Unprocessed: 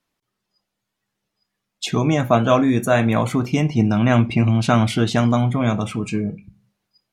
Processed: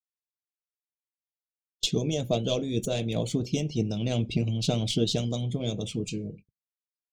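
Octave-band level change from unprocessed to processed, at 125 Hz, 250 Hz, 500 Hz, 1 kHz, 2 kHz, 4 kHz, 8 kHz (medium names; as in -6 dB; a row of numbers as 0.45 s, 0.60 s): -10.0 dB, -11.5 dB, -9.0 dB, -19.5 dB, -17.0 dB, -1.0 dB, -2.0 dB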